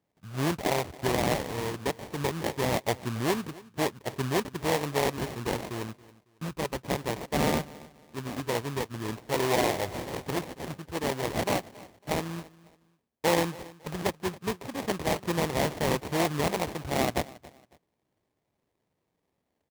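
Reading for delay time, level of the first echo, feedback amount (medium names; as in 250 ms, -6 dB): 276 ms, -20.5 dB, 29%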